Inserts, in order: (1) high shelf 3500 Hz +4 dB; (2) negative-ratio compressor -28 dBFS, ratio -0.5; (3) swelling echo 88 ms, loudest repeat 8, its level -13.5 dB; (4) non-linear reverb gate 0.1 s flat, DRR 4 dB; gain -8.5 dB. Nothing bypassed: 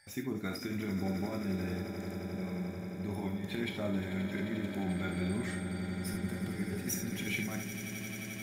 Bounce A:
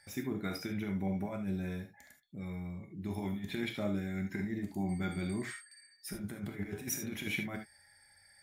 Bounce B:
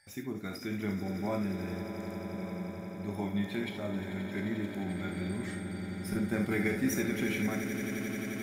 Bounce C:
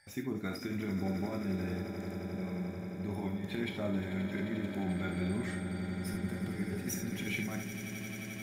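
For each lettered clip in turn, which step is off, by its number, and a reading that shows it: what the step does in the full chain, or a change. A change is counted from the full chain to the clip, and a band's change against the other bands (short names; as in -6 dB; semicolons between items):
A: 3, echo-to-direct 1.0 dB to -4.0 dB; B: 2, crest factor change +3.5 dB; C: 1, 8 kHz band -3.0 dB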